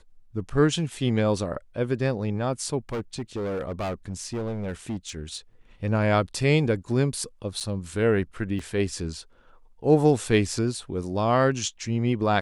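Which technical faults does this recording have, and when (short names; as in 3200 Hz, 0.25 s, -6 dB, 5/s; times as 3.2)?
2.89–5.37 clipped -26 dBFS
7.6–7.61 gap 7.2 ms
8.59 gap 4.5 ms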